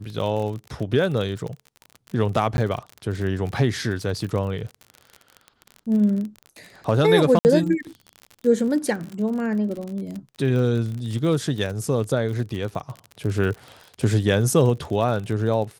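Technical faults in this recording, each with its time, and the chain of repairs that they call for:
surface crackle 39 per second −29 dBFS
0:02.57–0:02.58: drop-out 11 ms
0:07.39–0:07.45: drop-out 59 ms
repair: click removal
repair the gap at 0:02.57, 11 ms
repair the gap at 0:07.39, 59 ms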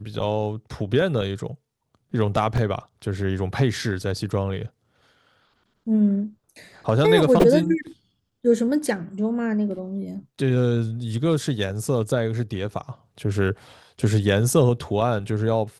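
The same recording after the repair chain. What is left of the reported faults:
none of them is left

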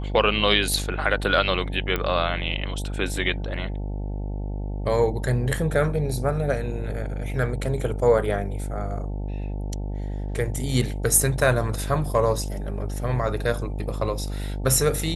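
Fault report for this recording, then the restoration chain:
mains buzz 50 Hz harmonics 18 −29 dBFS
0:01.96: click −11 dBFS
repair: click removal
hum removal 50 Hz, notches 18

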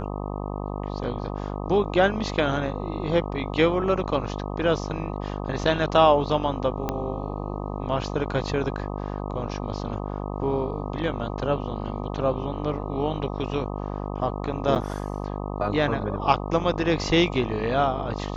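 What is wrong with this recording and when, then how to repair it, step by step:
mains buzz 50 Hz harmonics 25 −31 dBFS
0:06.89: click −12 dBFS
0:14.75–0:14.76: drop-out 7.9 ms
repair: click removal
hum removal 50 Hz, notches 25
repair the gap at 0:14.75, 7.9 ms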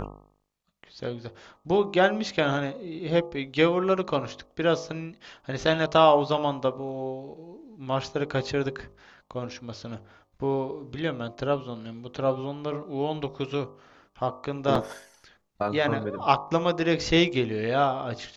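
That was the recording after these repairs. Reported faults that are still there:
0:06.89: click

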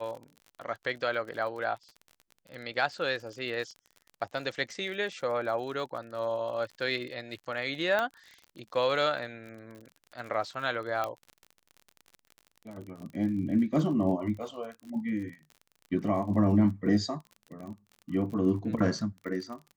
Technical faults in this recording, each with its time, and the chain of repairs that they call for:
surface crackle 43 per second −39 dBFS
0:07.99: click −16 dBFS
0:11.04: click −18 dBFS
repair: click removal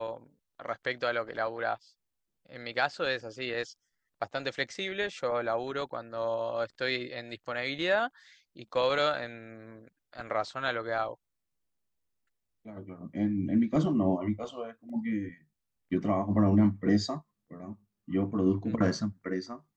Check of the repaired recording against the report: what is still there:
none of them is left

